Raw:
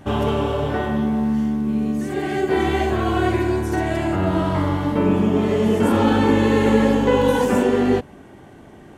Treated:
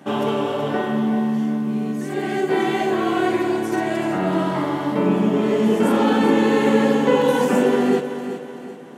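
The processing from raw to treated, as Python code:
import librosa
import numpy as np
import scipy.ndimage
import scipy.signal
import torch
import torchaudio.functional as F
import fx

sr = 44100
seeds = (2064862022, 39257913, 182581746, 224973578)

p1 = scipy.signal.sosfilt(scipy.signal.butter(6, 150.0, 'highpass', fs=sr, output='sos'), x)
y = p1 + fx.echo_feedback(p1, sr, ms=379, feedback_pct=44, wet_db=-10.5, dry=0)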